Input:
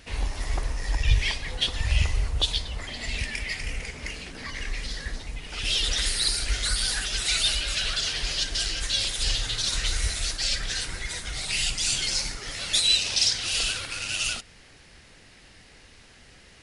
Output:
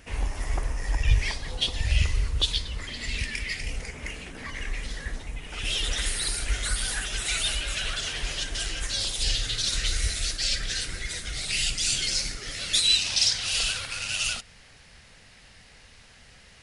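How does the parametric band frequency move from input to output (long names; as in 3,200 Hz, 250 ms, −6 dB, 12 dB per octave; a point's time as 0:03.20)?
parametric band −9 dB 0.63 octaves
0:01.13 4,100 Hz
0:02.10 730 Hz
0:03.51 730 Hz
0:03.96 4,600 Hz
0:08.82 4,600 Hz
0:09.35 920 Hz
0:12.67 920 Hz
0:13.28 330 Hz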